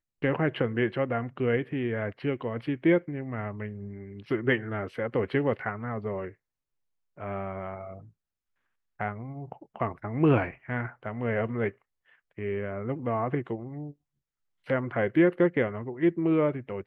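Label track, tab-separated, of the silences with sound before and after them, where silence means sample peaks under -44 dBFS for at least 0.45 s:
6.320000	7.170000	silence
8.050000	9.000000	silence
11.710000	12.380000	silence
13.920000	14.670000	silence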